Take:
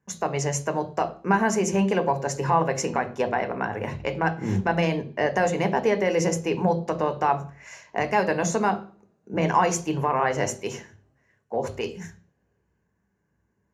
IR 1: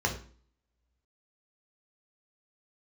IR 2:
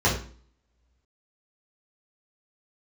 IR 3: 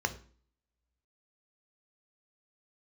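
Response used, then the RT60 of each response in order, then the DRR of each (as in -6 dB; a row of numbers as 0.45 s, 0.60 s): 3; 0.45 s, 0.45 s, 0.45 s; 0.5 dB, -7.5 dB, 7.5 dB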